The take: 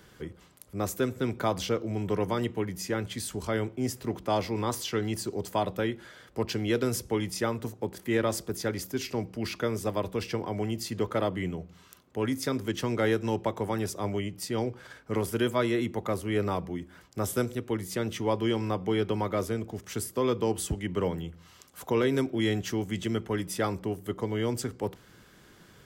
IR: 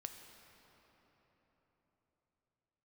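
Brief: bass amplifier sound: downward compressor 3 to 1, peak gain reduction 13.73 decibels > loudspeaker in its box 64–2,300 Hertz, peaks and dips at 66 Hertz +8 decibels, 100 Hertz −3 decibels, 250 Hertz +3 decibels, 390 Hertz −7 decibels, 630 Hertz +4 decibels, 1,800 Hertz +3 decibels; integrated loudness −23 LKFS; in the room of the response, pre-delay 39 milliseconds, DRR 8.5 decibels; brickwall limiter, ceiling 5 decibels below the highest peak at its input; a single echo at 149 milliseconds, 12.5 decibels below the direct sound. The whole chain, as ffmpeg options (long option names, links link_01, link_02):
-filter_complex "[0:a]alimiter=limit=-19.5dB:level=0:latency=1,aecho=1:1:149:0.237,asplit=2[link_01][link_02];[1:a]atrim=start_sample=2205,adelay=39[link_03];[link_02][link_03]afir=irnorm=-1:irlink=0,volume=-4.5dB[link_04];[link_01][link_04]amix=inputs=2:normalize=0,acompressor=threshold=-41dB:ratio=3,highpass=frequency=64:width=0.5412,highpass=frequency=64:width=1.3066,equalizer=frequency=66:width_type=q:width=4:gain=8,equalizer=frequency=100:width_type=q:width=4:gain=-3,equalizer=frequency=250:width_type=q:width=4:gain=3,equalizer=frequency=390:width_type=q:width=4:gain=-7,equalizer=frequency=630:width_type=q:width=4:gain=4,equalizer=frequency=1800:width_type=q:width=4:gain=3,lowpass=frequency=2300:width=0.5412,lowpass=frequency=2300:width=1.3066,volume=20dB"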